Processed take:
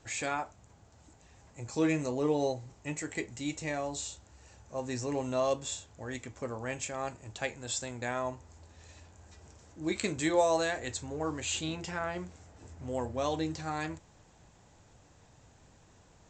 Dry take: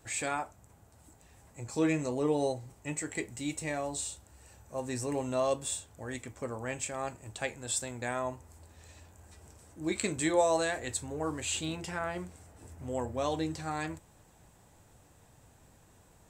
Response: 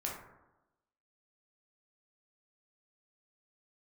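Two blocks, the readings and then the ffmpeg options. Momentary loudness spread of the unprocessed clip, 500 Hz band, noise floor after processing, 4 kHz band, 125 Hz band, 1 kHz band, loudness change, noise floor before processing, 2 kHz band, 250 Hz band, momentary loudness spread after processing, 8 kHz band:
12 LU, 0.0 dB, −61 dBFS, +1.0 dB, 0.0 dB, 0.0 dB, 0.0 dB, −61 dBFS, +0.5 dB, 0.0 dB, 12 LU, −2.5 dB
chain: -af "crystalizer=i=0.5:c=0" -ar 16000 -c:a pcm_alaw

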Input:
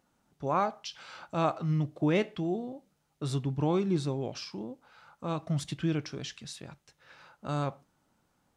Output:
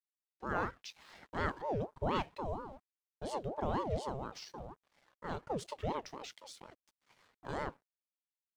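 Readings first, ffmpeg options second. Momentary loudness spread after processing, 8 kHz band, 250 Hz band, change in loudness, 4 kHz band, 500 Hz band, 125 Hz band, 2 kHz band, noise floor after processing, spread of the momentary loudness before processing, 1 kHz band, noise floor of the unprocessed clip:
16 LU, −8.0 dB, −12.0 dB, −7.5 dB, −7.5 dB, −6.0 dB, −12.0 dB, −2.0 dB, below −85 dBFS, 15 LU, −3.5 dB, −74 dBFS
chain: -af "aeval=exprs='sgn(val(0))*max(abs(val(0))-0.00133,0)':channel_layout=same,aeval=exprs='val(0)*sin(2*PI*510*n/s+510*0.5/4.2*sin(2*PI*4.2*n/s))':channel_layout=same,volume=-4.5dB"

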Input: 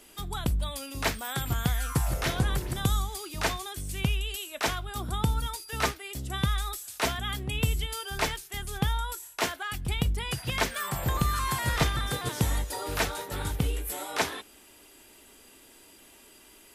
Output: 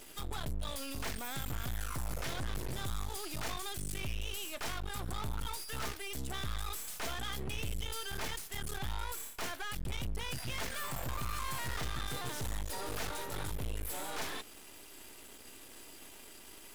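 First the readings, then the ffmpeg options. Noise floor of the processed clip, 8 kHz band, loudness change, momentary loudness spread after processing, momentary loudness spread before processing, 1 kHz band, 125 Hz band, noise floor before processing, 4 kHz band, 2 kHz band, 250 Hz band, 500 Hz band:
−52 dBFS, −6.5 dB, −9.0 dB, 12 LU, 7 LU, −9.5 dB, −11.5 dB, −55 dBFS, −8.0 dB, −9.0 dB, −11.0 dB, −9.5 dB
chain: -af "aeval=exprs='(tanh(25.1*val(0)+0.65)-tanh(0.65))/25.1':channel_layout=same,aeval=exprs='max(val(0),0)':channel_layout=same,alimiter=level_in=15.5dB:limit=-24dB:level=0:latency=1:release=60,volume=-15.5dB,volume=9.5dB"

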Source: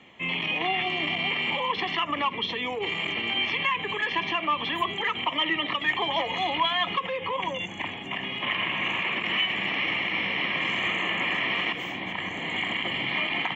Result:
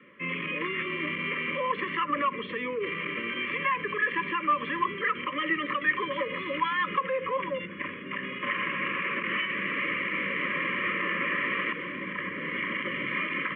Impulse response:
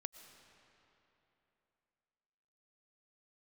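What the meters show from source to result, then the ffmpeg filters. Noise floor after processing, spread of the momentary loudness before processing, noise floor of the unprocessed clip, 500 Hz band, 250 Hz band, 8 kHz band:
−39 dBFS, 5 LU, −36 dBFS, +0.5 dB, 0.0 dB, can't be measured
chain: -af "asuperstop=centerf=770:order=20:qfactor=1.9,highpass=frequency=110:width=0.5412,highpass=frequency=110:width=1.3066,equalizer=frequency=120:width_type=q:width=4:gain=-8,equalizer=frequency=580:width_type=q:width=4:gain=4,equalizer=frequency=1500:width_type=q:width=4:gain=6,lowpass=frequency=2200:width=0.5412,lowpass=frequency=2200:width=1.3066"

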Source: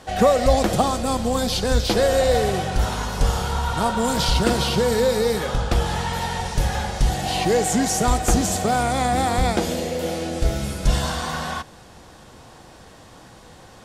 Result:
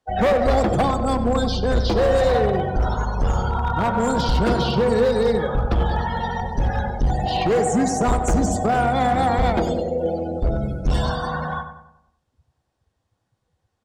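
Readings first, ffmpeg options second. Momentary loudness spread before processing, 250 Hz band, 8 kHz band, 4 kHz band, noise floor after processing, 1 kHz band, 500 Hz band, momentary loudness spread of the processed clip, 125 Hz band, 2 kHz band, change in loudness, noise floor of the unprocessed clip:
7 LU, +1.0 dB, −8.0 dB, −5.5 dB, −75 dBFS, +1.5 dB, +1.0 dB, 6 LU, +1.5 dB, −1.0 dB, +0.5 dB, −46 dBFS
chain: -filter_complex "[0:a]afftdn=noise_reduction=34:noise_floor=-28,acrossover=split=220|1600[link_01][link_02][link_03];[link_03]alimiter=limit=-23dB:level=0:latency=1:release=215[link_04];[link_01][link_02][link_04]amix=inputs=3:normalize=0,asoftclip=type=hard:threshold=-16.5dB,asplit=2[link_05][link_06];[link_06]adelay=95,lowpass=frequency=2000:poles=1,volume=-8dB,asplit=2[link_07][link_08];[link_08]adelay=95,lowpass=frequency=2000:poles=1,volume=0.49,asplit=2[link_09][link_10];[link_10]adelay=95,lowpass=frequency=2000:poles=1,volume=0.49,asplit=2[link_11][link_12];[link_12]adelay=95,lowpass=frequency=2000:poles=1,volume=0.49,asplit=2[link_13][link_14];[link_14]adelay=95,lowpass=frequency=2000:poles=1,volume=0.49,asplit=2[link_15][link_16];[link_16]adelay=95,lowpass=frequency=2000:poles=1,volume=0.49[link_17];[link_05][link_07][link_09][link_11][link_13][link_15][link_17]amix=inputs=7:normalize=0,volume=2dB"

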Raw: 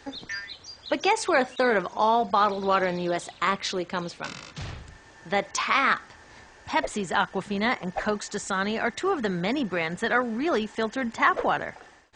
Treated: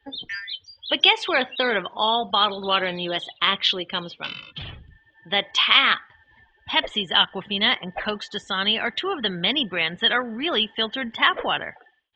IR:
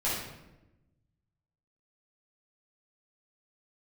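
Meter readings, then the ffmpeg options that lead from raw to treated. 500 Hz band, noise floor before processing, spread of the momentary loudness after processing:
−1.5 dB, −52 dBFS, 14 LU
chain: -af "afftdn=noise_reduction=24:noise_floor=-42,lowpass=frequency=3200:width_type=q:width=11,adynamicequalizer=threshold=0.0251:dfrequency=1800:dqfactor=0.7:tfrequency=1800:tqfactor=0.7:attack=5:release=100:ratio=0.375:range=2:mode=boostabove:tftype=highshelf,volume=-2dB"

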